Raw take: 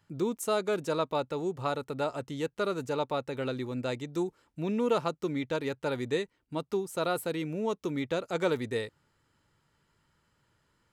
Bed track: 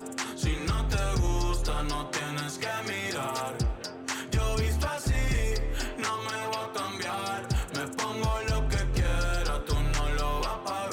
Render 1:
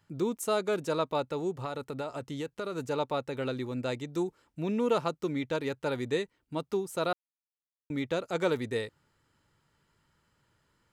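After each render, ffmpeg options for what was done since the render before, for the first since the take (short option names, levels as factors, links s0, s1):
-filter_complex "[0:a]asettb=1/sr,asplit=3[s0][s1][s2];[s0]atrim=end=1.644[s3];[s1]atrim=start=1.64:end=2.76,asetpts=PTS-STARTPTS,afade=t=in:d=0.004:c=qsin,afade=t=out:st=1.116:d=0.004:c=qsin,acompressor=threshold=0.0282:ratio=5:attack=3.2:release=140:knee=1:detection=peak[s4];[s2]atrim=start=2.756[s5];[s3][s4]acrossfade=d=0.004:c1=hsin:c2=qsin[s6];[s6][s5]acrossfade=d=0.004:c1=qsin:c2=hsin,asplit=3[s7][s8][s9];[s7]atrim=end=7.13,asetpts=PTS-STARTPTS,afade=t=out:st=7.126:d=0.004:c=hsin[s10];[s8]atrim=start=7.13:end=7.9,asetpts=PTS-STARTPTS,volume=0[s11];[s9]atrim=start=7.9,asetpts=PTS-STARTPTS,afade=t=in:d=0.004:c=hsin[s12];[s10][s11][s12]concat=n=3:v=0:a=1"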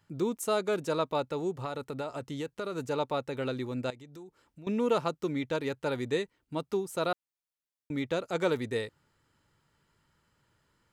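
-filter_complex "[0:a]asettb=1/sr,asplit=3[s0][s1][s2];[s0]atrim=end=3.904[s3];[s1]atrim=start=3.9:end=4.67,asetpts=PTS-STARTPTS,afade=t=in:d=0.004:c=qsin,afade=t=out:st=0.766:d=0.004:c=qsin,acompressor=threshold=0.00316:ratio=3:attack=3.2:release=140:knee=1:detection=peak[s4];[s2]atrim=start=4.666[s5];[s3][s4]acrossfade=d=0.004:c1=hsin:c2=qsin[s6];[s6][s5]acrossfade=d=0.004:c1=qsin:c2=hsin"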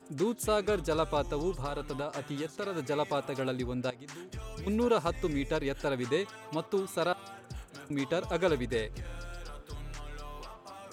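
-filter_complex "[1:a]volume=0.178[s0];[0:a][s0]amix=inputs=2:normalize=0"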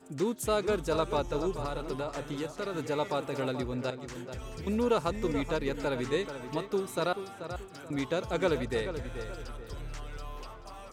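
-filter_complex "[0:a]asplit=2[s0][s1];[s1]adelay=433,lowpass=f=2900:p=1,volume=0.335,asplit=2[s2][s3];[s3]adelay=433,lowpass=f=2900:p=1,volume=0.38,asplit=2[s4][s5];[s5]adelay=433,lowpass=f=2900:p=1,volume=0.38,asplit=2[s6][s7];[s7]adelay=433,lowpass=f=2900:p=1,volume=0.38[s8];[s0][s2][s4][s6][s8]amix=inputs=5:normalize=0"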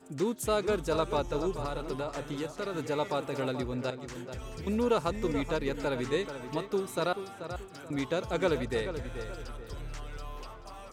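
-af anull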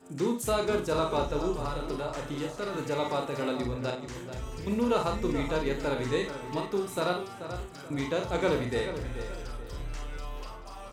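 -filter_complex "[0:a]asplit=2[s0][s1];[s1]adelay=50,volume=0.355[s2];[s0][s2]amix=inputs=2:normalize=0,aecho=1:1:34|51:0.473|0.398"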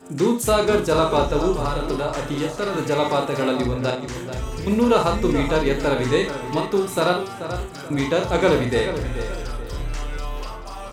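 -af "volume=2.99"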